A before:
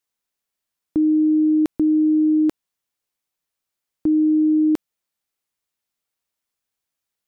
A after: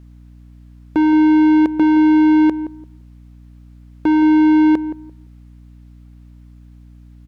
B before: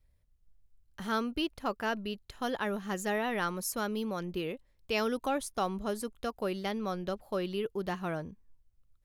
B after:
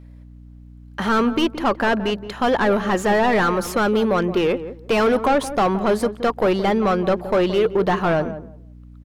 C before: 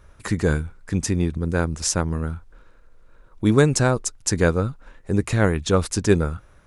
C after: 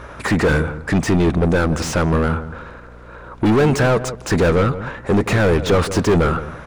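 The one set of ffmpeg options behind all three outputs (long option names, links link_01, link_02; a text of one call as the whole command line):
ffmpeg -i in.wav -filter_complex "[0:a]asplit=2[link_01][link_02];[link_02]highpass=frequency=720:poles=1,volume=38dB,asoftclip=type=tanh:threshold=-2dB[link_03];[link_01][link_03]amix=inputs=2:normalize=0,lowpass=frequency=1100:poles=1,volume=-6dB,asplit=2[link_04][link_05];[link_05]adelay=171,lowpass=frequency=880:poles=1,volume=-11dB,asplit=2[link_06][link_07];[link_07]adelay=171,lowpass=frequency=880:poles=1,volume=0.21,asplit=2[link_08][link_09];[link_09]adelay=171,lowpass=frequency=880:poles=1,volume=0.21[link_10];[link_04][link_06][link_08][link_10]amix=inputs=4:normalize=0,aeval=exprs='val(0)+0.0158*(sin(2*PI*60*n/s)+sin(2*PI*2*60*n/s)/2+sin(2*PI*3*60*n/s)/3+sin(2*PI*4*60*n/s)/4+sin(2*PI*5*60*n/s)/5)':channel_layout=same,volume=-4.5dB" out.wav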